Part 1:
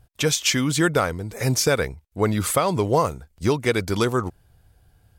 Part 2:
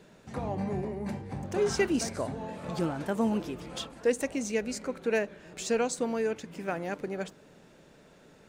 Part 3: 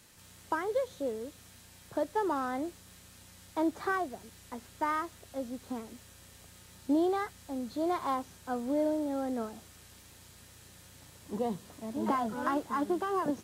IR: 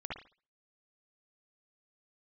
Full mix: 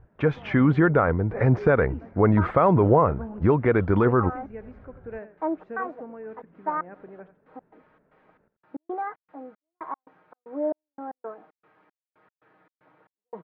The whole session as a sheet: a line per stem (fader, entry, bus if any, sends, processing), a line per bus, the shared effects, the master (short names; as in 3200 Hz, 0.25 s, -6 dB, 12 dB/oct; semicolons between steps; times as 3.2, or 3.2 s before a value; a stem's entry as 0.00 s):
+1.5 dB, 0.00 s, bus A, no send, no echo send, dry
-9.5 dB, 0.00 s, no bus, no send, echo send -13.5 dB, dry
-5.0 dB, 1.85 s, bus A, no send, no echo send, HPF 380 Hz; comb 6.4 ms; step gate "xx.xx..x." 115 bpm -60 dB
bus A: 0.0 dB, AGC gain up to 6.5 dB; limiter -9 dBFS, peak gain reduction 6.5 dB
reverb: off
echo: echo 86 ms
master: LPF 1700 Hz 24 dB/oct